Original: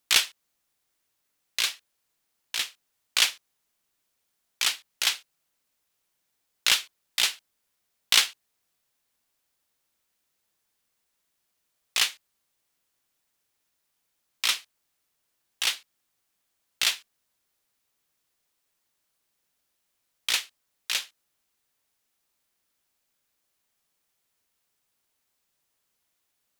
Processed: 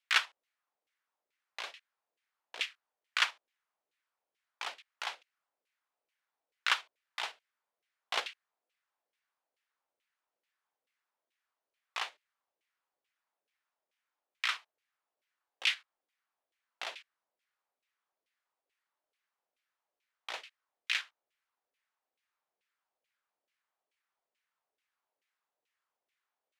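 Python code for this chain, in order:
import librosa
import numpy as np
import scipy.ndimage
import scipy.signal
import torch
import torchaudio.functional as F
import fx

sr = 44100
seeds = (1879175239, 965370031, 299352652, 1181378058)

p1 = scipy.signal.sosfilt(scipy.signal.butter(2, 200.0, 'highpass', fs=sr, output='sos'), x)
p2 = fx.level_steps(p1, sr, step_db=19)
p3 = p1 + (p2 * librosa.db_to_amplitude(-1.0))
y = fx.filter_lfo_bandpass(p3, sr, shape='saw_down', hz=2.3, low_hz=470.0, high_hz=2600.0, q=2.0)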